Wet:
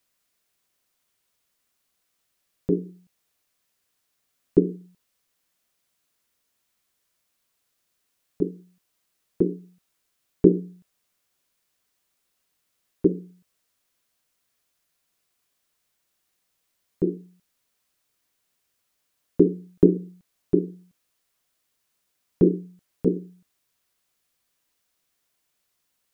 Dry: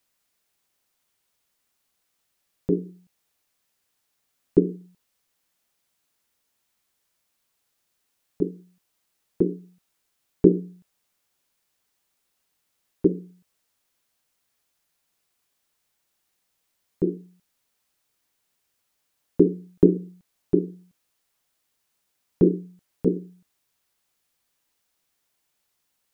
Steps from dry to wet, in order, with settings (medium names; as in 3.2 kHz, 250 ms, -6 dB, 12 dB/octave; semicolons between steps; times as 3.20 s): band-stop 850 Hz, Q 12